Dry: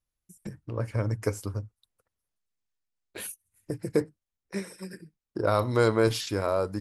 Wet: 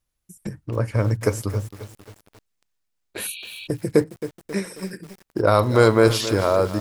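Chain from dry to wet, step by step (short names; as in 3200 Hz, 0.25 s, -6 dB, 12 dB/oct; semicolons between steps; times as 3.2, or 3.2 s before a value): spectral repair 3.23–3.64, 2300–4600 Hz before; lo-fi delay 0.269 s, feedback 55%, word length 7-bit, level -13 dB; gain +7.5 dB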